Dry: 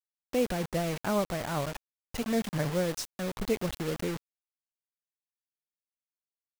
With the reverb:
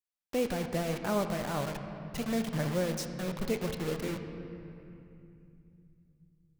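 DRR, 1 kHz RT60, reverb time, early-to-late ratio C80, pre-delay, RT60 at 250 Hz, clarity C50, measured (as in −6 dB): 6.0 dB, 2.6 s, 2.7 s, 8.0 dB, 5 ms, 4.1 s, 7.5 dB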